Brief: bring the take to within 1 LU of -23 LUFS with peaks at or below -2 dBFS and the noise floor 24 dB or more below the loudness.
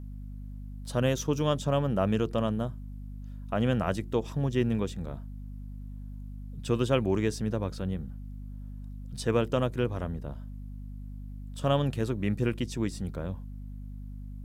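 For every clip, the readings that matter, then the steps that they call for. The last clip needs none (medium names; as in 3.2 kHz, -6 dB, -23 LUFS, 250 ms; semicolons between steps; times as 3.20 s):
hum 50 Hz; highest harmonic 250 Hz; hum level -37 dBFS; loudness -30.0 LUFS; peak level -12.5 dBFS; loudness target -23.0 LUFS
-> de-hum 50 Hz, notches 5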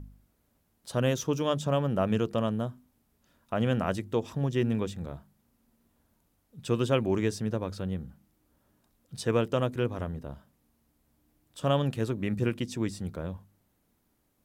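hum not found; loudness -30.0 LUFS; peak level -13.0 dBFS; loudness target -23.0 LUFS
-> trim +7 dB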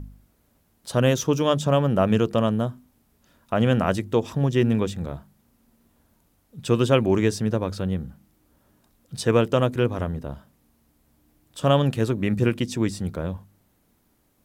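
loudness -23.0 LUFS; peak level -6.0 dBFS; noise floor -65 dBFS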